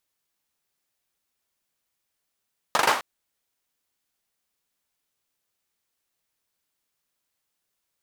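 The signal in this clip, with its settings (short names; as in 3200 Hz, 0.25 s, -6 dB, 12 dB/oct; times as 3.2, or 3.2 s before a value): hand clap length 0.26 s, apart 41 ms, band 930 Hz, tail 0.41 s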